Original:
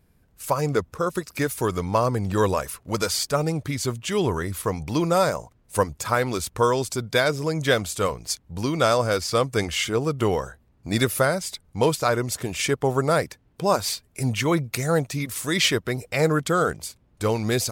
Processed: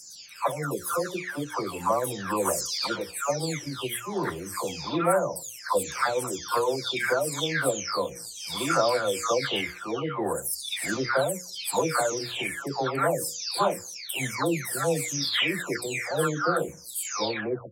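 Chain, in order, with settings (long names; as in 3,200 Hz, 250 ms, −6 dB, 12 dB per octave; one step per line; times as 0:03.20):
every frequency bin delayed by itself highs early, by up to 647 ms
high-pass filter 330 Hz 6 dB per octave
mains-hum notches 60/120/180/240/300/360/420/480/540 Hz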